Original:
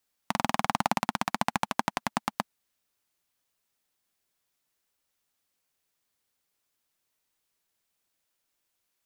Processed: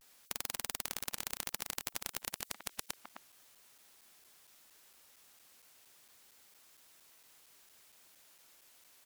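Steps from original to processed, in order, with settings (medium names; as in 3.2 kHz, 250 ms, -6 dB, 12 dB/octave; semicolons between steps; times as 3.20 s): chunks repeated in reverse 422 ms, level -10 dB; bass shelf 220 Hz -6.5 dB; speakerphone echo 260 ms, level -25 dB; vibrato 0.33 Hz 40 cents; crackling interface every 0.23 s, samples 256, zero, from 0.33 s; spectrum-flattening compressor 10:1; trim -4 dB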